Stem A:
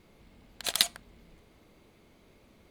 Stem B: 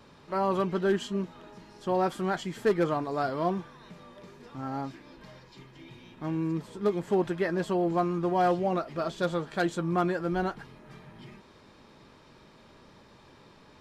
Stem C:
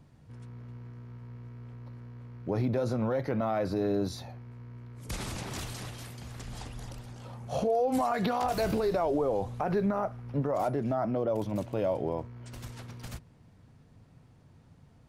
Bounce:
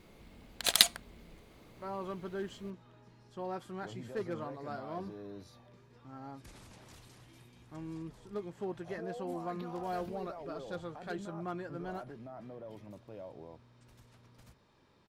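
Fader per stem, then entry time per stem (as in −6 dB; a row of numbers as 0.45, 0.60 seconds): +2.0, −13.0, −18.0 decibels; 0.00, 1.50, 1.35 seconds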